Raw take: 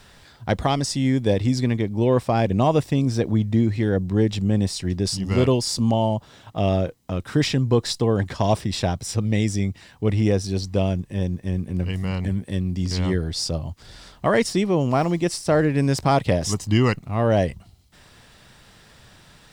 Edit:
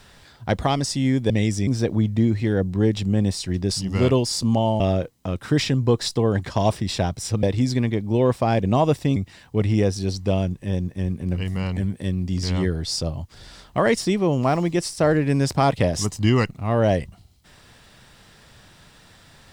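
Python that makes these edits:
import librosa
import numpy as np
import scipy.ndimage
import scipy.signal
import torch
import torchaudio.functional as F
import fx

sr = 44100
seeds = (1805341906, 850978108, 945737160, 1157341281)

y = fx.edit(x, sr, fx.swap(start_s=1.3, length_s=1.73, other_s=9.27, other_length_s=0.37),
    fx.cut(start_s=6.16, length_s=0.48), tone=tone)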